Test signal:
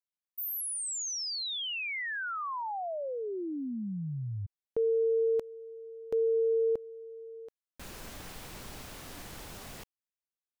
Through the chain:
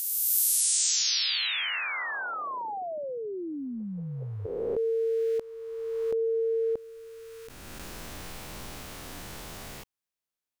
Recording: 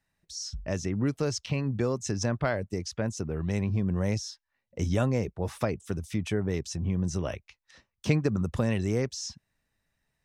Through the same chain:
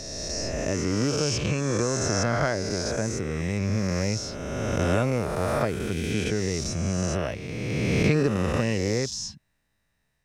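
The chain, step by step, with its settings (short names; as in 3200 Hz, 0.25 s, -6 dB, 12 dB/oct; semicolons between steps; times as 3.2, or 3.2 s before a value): spectral swells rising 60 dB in 2.47 s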